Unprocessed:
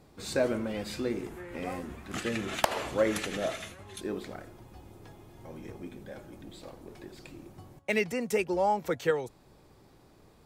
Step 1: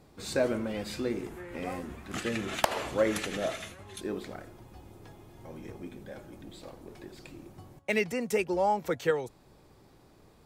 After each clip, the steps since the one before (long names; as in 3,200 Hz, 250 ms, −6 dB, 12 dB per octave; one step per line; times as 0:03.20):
no processing that can be heard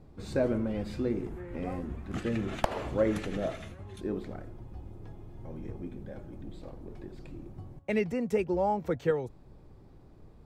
spectral tilt −3 dB per octave
level −3.5 dB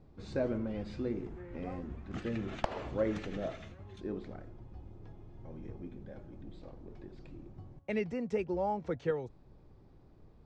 low-pass filter 6,500 Hz 24 dB per octave
level −5 dB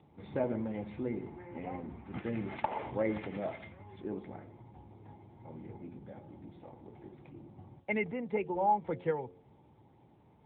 hum removal 89.39 Hz, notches 6
hollow resonant body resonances 870/2,100 Hz, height 12 dB, ringing for 25 ms
AMR narrowband 10.2 kbit/s 8,000 Hz